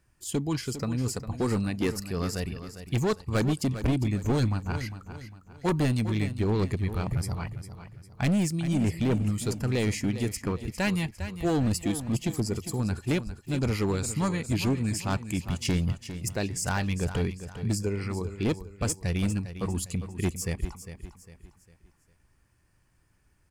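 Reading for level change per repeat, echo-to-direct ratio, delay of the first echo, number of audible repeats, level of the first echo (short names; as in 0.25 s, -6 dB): -8.5 dB, -11.0 dB, 0.403 s, 3, -11.5 dB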